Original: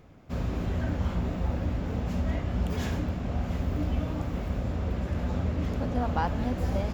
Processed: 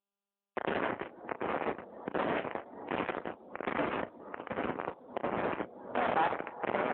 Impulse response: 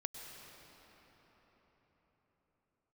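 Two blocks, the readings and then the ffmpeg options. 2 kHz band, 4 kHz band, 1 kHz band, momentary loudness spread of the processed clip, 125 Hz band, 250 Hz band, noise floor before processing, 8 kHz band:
+4.5 dB, -2.5 dB, +2.5 dB, 10 LU, -21.5 dB, -8.0 dB, -35 dBFS, n/a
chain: -filter_complex "[0:a]aecho=1:1:897:0.422,tremolo=f=1.3:d=0.61,asplit=2[a][b];[b]asoftclip=type=tanh:threshold=-27dB,volume=-6.5dB[c];[a][c]amix=inputs=2:normalize=0,acrusher=bits=3:mix=0:aa=0.000001,dynaudnorm=f=180:g=5:m=15dB,asplit=2[d][e];[1:a]atrim=start_sample=2205,asetrate=66150,aresample=44100,lowpass=3.5k[f];[e][f]afir=irnorm=-1:irlink=0,volume=-12.5dB[g];[d][g]amix=inputs=2:normalize=0,acompressor=threshold=-28dB:ratio=4,asoftclip=type=hard:threshold=-18dB,highpass=330,lowpass=2.5k,afftdn=nr=26:nf=-47,asplit=2[h][i];[i]adelay=35,volume=-11dB[j];[h][j]amix=inputs=2:normalize=0,volume=2dB" -ar 8000 -c:a libopencore_amrnb -b:a 10200

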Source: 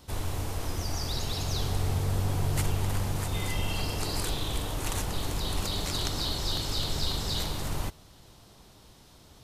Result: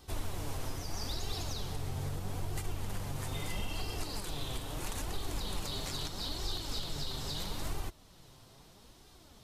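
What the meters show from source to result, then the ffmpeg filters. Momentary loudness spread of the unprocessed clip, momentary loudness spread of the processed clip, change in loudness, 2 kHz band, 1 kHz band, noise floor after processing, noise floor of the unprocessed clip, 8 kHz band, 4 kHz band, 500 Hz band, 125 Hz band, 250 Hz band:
5 LU, 20 LU, -8.0 dB, -7.0 dB, -7.0 dB, -58 dBFS, -55 dBFS, -7.0 dB, -7.0 dB, -7.0 dB, -9.0 dB, -7.0 dB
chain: -af "alimiter=limit=-23.5dB:level=0:latency=1:release=424,flanger=delay=2.5:depth=5.3:regen=42:speed=0.77:shape=sinusoidal,volume=1dB"

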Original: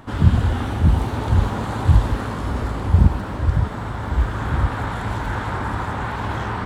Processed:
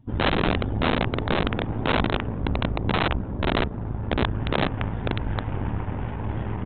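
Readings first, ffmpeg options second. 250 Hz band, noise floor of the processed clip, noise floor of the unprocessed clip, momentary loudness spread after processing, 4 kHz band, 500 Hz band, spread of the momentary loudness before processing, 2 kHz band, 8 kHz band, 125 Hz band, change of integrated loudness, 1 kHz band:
-1.0 dB, -33 dBFS, -28 dBFS, 6 LU, +6.5 dB, +3.0 dB, 9 LU, +1.0 dB, n/a, -8.0 dB, -4.5 dB, -2.5 dB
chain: -af "afftdn=nr=18:nf=-33,aeval=exprs='0.794*(cos(1*acos(clip(val(0)/0.794,-1,1)))-cos(1*PI/2))+0.0501*(cos(5*acos(clip(val(0)/0.794,-1,1)))-cos(5*PI/2))+0.316*(cos(6*acos(clip(val(0)/0.794,-1,1)))-cos(6*PI/2))+0.0501*(cos(8*acos(clip(val(0)/0.794,-1,1)))-cos(8*PI/2))':c=same,equalizer=f=1.3k:t=o:w=1.7:g=-14.5,aresample=8000,aeval=exprs='(mod(3.55*val(0)+1,2)-1)/3.55':c=same,aresample=44100,volume=-3.5dB"

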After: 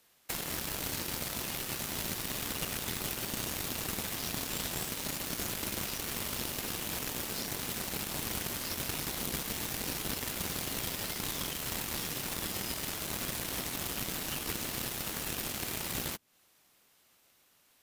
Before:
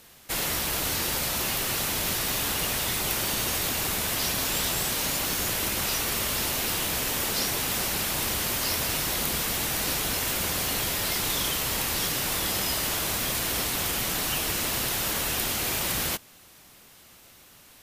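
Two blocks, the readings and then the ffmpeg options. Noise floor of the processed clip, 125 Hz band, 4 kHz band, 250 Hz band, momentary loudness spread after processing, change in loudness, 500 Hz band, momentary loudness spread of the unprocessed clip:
-67 dBFS, -6.5 dB, -9.5 dB, -5.5 dB, 1 LU, -9.0 dB, -8.0 dB, 1 LU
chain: -filter_complex "[0:a]acrossover=split=310[a][b];[b]acompressor=threshold=-38dB:ratio=4[c];[a][c]amix=inputs=2:normalize=0,aeval=exprs='0.0891*(cos(1*acos(clip(val(0)/0.0891,-1,1)))-cos(1*PI/2))+0.0112*(cos(7*acos(clip(val(0)/0.0891,-1,1)))-cos(7*PI/2))':c=same,lowshelf=f=170:g=-9.5,volume=3.5dB"

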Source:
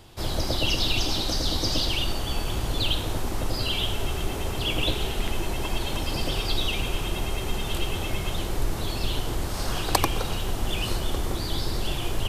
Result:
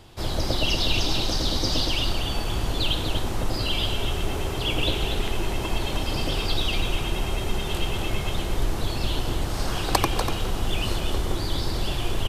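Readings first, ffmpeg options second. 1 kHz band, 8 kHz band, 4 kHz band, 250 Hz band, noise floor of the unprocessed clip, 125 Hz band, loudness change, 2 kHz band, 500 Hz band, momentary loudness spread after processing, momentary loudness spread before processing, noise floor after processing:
+1.5 dB, -0.5 dB, +1.0 dB, +1.5 dB, -30 dBFS, +1.5 dB, +1.5 dB, +1.5 dB, +1.5 dB, 5 LU, 6 LU, -29 dBFS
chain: -filter_complex "[0:a]highshelf=f=8.4k:g=-5.5,asplit=2[a][b];[b]aecho=0:1:243:0.422[c];[a][c]amix=inputs=2:normalize=0,volume=1dB"

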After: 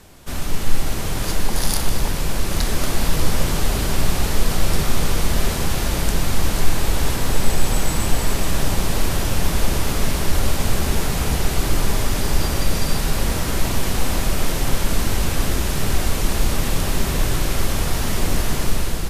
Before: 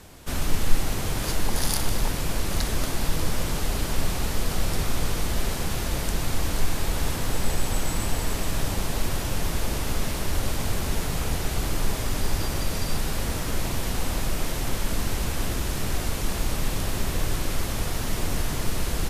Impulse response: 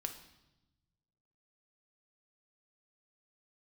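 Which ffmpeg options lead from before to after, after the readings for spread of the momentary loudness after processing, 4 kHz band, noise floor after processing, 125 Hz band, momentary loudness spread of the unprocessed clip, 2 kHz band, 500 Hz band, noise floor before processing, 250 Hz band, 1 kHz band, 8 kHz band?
2 LU, +5.5 dB, -23 dBFS, +6.0 dB, 1 LU, +5.5 dB, +6.0 dB, -29 dBFS, +6.0 dB, +5.5 dB, +5.5 dB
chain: -filter_complex "[0:a]dynaudnorm=f=490:g=3:m=5.5dB,asplit=2[a][b];[1:a]atrim=start_sample=2205[c];[b][c]afir=irnorm=-1:irlink=0,volume=4dB[d];[a][d]amix=inputs=2:normalize=0,volume=-6.5dB"

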